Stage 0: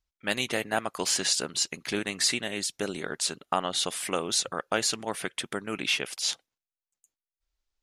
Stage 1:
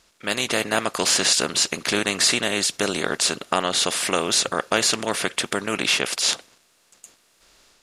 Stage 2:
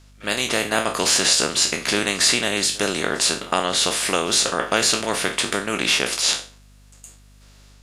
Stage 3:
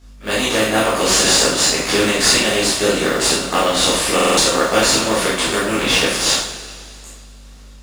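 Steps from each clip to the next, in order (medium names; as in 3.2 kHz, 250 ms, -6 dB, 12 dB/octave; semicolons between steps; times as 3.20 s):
spectral levelling over time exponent 0.6; band-stop 790 Hz, Q 12; level rider gain up to 4.5 dB
spectral sustain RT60 0.35 s; pre-echo 58 ms -22.5 dB; mains buzz 50 Hz, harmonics 5, -50 dBFS -7 dB/octave
in parallel at -8 dB: sample-rate reducer 3.3 kHz, jitter 0%; on the sum: reverberation, pre-delay 12 ms, DRR -7 dB; buffer glitch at 4.14 s, samples 2048, times 4; trim -4 dB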